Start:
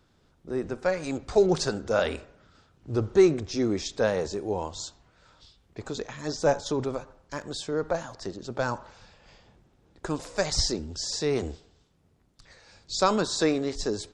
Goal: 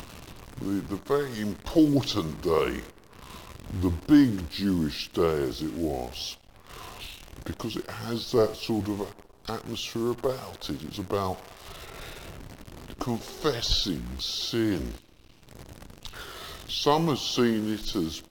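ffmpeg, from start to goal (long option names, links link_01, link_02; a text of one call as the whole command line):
ffmpeg -i in.wav -af "acompressor=mode=upward:threshold=-28dB:ratio=2.5,acrusher=bits=8:dc=4:mix=0:aa=0.000001,asetrate=34045,aresample=44100" out.wav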